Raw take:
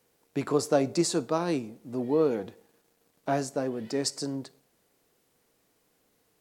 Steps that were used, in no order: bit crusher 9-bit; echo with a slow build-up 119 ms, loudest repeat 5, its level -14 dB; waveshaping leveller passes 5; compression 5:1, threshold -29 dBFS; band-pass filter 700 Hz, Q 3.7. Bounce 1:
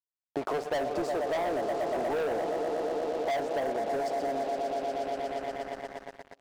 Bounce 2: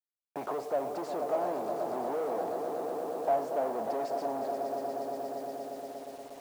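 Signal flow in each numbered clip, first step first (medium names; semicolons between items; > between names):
echo with a slow build-up > bit crusher > band-pass filter > waveshaping leveller > compression; compression > echo with a slow build-up > waveshaping leveller > band-pass filter > bit crusher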